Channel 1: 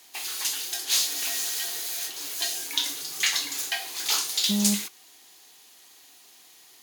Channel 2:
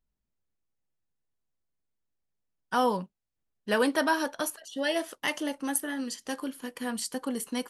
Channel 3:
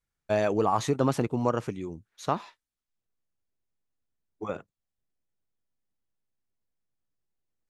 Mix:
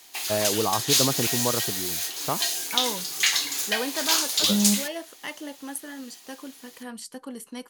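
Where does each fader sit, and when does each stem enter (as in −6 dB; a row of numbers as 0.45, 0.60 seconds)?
+2.5, −5.5, −1.0 decibels; 0.00, 0.00, 0.00 seconds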